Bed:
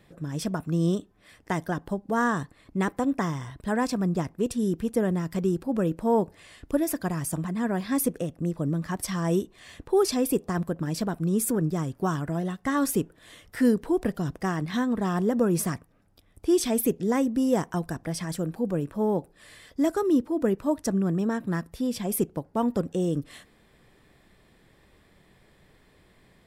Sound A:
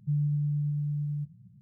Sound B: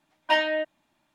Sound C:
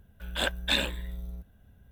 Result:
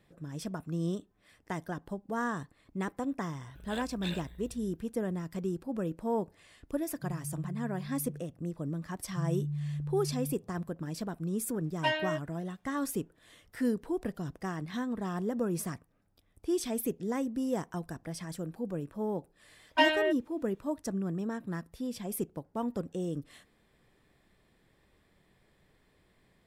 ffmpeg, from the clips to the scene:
ffmpeg -i bed.wav -i cue0.wav -i cue1.wav -i cue2.wav -filter_complex "[1:a]asplit=2[link_01][link_02];[2:a]asplit=2[link_03][link_04];[0:a]volume=-8.5dB[link_05];[3:a]atrim=end=1.91,asetpts=PTS-STARTPTS,volume=-14.5dB,afade=type=in:duration=0.004:curve=hsin,afade=type=out:start_time=1.906:duration=0.004:curve=hsin,adelay=3340[link_06];[link_01]atrim=end=1.61,asetpts=PTS-STARTPTS,volume=-12dB,afade=type=in:duration=0.004:curve=hsin,afade=type=out:start_time=1.606:duration=0.004:curve=hsin,adelay=6950[link_07];[link_02]atrim=end=1.61,asetpts=PTS-STARTPTS,volume=-6dB,afade=type=in:duration=0.004:curve=hsin,afade=type=out:start_time=1.606:duration=0.004:curve=hsin,adelay=9090[link_08];[link_03]atrim=end=1.14,asetpts=PTS-STARTPTS,volume=-7.5dB,afade=type=in:duration=0.004:curve=hsin,afade=type=out:start_time=1.136:duration=0.004:curve=hsin,adelay=508914S[link_09];[link_04]atrim=end=1.14,asetpts=PTS-STARTPTS,volume=-2.5dB,afade=type=in:duration=0.004:curve=hsin,afade=type=out:start_time=1.136:duration=0.004:curve=hsin,adelay=19480[link_10];[link_05][link_06][link_07][link_08][link_09][link_10]amix=inputs=6:normalize=0" out.wav

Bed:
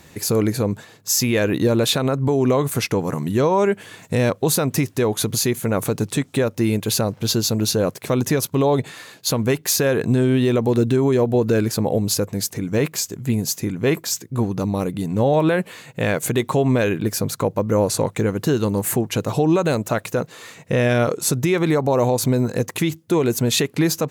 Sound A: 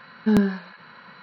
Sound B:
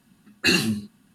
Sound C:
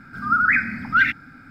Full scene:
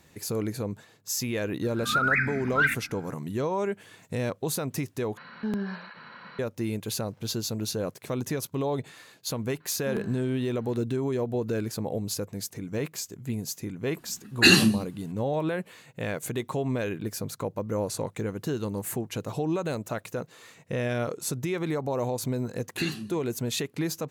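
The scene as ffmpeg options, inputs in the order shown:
ffmpeg -i bed.wav -i cue0.wav -i cue1.wav -i cue2.wav -filter_complex "[1:a]asplit=2[link_01][link_02];[2:a]asplit=2[link_03][link_04];[0:a]volume=-11dB[link_05];[link_01]acompressor=threshold=-29dB:ratio=3:attack=0.14:release=172:knee=1:detection=peak[link_06];[link_03]acontrast=28[link_07];[link_04]highshelf=frequency=10000:gain=-9.5[link_08];[link_05]asplit=2[link_09][link_10];[link_09]atrim=end=5.174[link_11];[link_06]atrim=end=1.22[link_12];[link_10]atrim=start=6.386[link_13];[3:a]atrim=end=1.5,asetpts=PTS-STARTPTS,volume=-6.5dB,afade=type=in:duration=0.004:curve=hsin,afade=type=out:start_time=1.496:duration=0.004:curve=hsin,adelay=1630[link_14];[link_02]atrim=end=1.22,asetpts=PTS-STARTPTS,volume=-16.5dB,afade=type=in:duration=0.004:curve=hsin,afade=type=out:start_time=1.216:duration=0.004:curve=hsin,adelay=9600[link_15];[link_07]atrim=end=1.14,asetpts=PTS-STARTPTS,volume=-1.5dB,afade=type=in:duration=0.004:curve=hsin,afade=type=out:start_time=1.136:duration=0.004:curve=hsin,adelay=13980[link_16];[link_08]atrim=end=1.14,asetpts=PTS-STARTPTS,volume=-13dB,afade=type=in:duration=0.004:curve=hsin,afade=type=out:start_time=1.136:duration=0.004:curve=hsin,adelay=22330[link_17];[link_11][link_12]acrossfade=duration=0.004:curve1=hsin:curve2=hsin[link_18];[link_18][link_13]acrossfade=duration=0.004:curve1=hsin:curve2=hsin[link_19];[link_19][link_14][link_15][link_16][link_17]amix=inputs=5:normalize=0" out.wav

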